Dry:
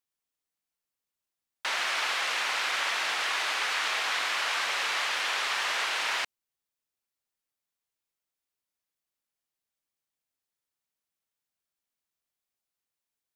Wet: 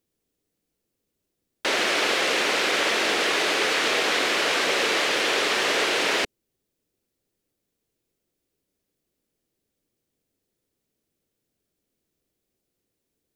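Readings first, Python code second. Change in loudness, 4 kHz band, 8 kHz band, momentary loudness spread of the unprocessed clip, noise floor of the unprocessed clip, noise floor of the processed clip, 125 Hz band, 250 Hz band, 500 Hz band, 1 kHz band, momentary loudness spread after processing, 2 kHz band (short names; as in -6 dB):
+6.0 dB, +6.0 dB, +6.5 dB, 2 LU, under -85 dBFS, -81 dBFS, n/a, +22.5 dB, +16.5 dB, +4.5 dB, 2 LU, +5.5 dB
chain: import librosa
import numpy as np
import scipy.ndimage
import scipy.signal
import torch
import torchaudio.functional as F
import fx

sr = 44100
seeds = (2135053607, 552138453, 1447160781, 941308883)

y = fx.low_shelf_res(x, sr, hz=620.0, db=13.5, q=1.5)
y = y * 10.0 ** (6.5 / 20.0)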